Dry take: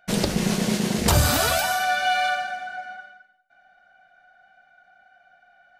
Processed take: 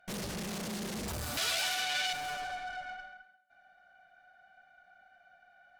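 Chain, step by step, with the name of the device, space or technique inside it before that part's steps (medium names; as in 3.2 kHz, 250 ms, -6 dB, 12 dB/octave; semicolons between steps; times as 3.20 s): rockabilly slapback (valve stage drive 35 dB, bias 0.65; tape echo 136 ms, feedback 22%, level -12 dB, low-pass 4.1 kHz); 1.37–2.13 s: frequency weighting D; trim -2 dB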